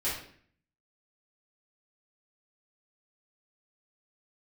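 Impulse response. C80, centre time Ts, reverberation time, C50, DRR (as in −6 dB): 7.5 dB, 43 ms, 0.55 s, 3.5 dB, −11.0 dB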